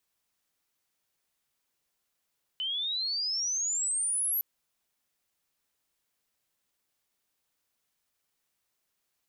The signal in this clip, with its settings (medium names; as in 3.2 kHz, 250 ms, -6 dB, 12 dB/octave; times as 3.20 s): sweep logarithmic 3 kHz -> 12 kHz -29.5 dBFS -> -26 dBFS 1.81 s